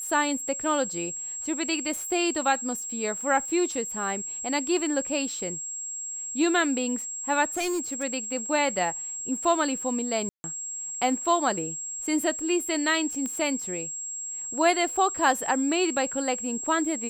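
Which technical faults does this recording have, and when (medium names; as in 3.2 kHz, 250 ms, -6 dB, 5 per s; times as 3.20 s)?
whine 7.6 kHz -32 dBFS
7.57–8.04 s: clipped -24.5 dBFS
10.29–10.44 s: dropout 150 ms
13.26 s: pop -19 dBFS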